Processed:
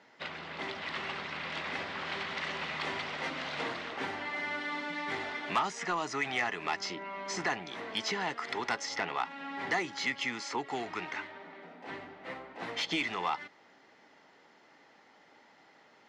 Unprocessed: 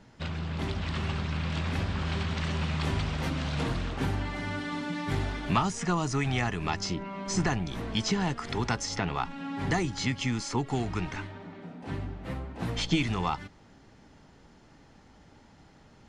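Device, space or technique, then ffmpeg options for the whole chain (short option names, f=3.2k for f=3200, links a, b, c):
intercom: -af "highpass=450,lowpass=5k,equalizer=f=2k:t=o:w=0.21:g=7,asoftclip=type=tanh:threshold=-20dB"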